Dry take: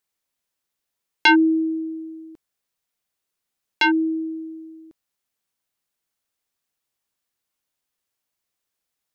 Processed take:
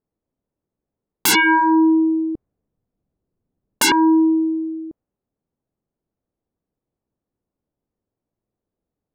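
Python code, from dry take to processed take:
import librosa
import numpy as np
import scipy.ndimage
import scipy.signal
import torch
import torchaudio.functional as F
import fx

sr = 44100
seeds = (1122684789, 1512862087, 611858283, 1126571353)

y = fx.env_lowpass(x, sr, base_hz=390.0, full_db=-20.0)
y = fx.low_shelf(y, sr, hz=260.0, db=9.5, at=(1.28, 3.92))
y = fx.fold_sine(y, sr, drive_db=17, ceiling_db=-5.0)
y = y * 10.0 ** (-6.5 / 20.0)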